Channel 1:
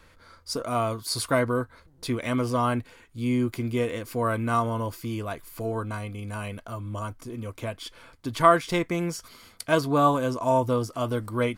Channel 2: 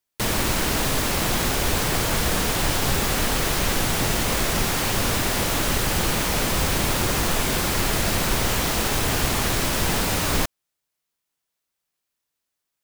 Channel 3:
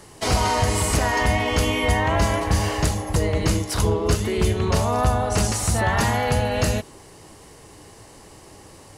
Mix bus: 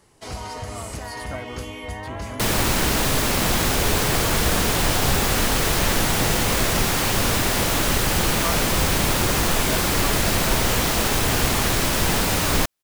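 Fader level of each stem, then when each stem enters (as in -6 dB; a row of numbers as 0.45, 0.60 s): -12.0, +2.0, -12.5 dB; 0.00, 2.20, 0.00 s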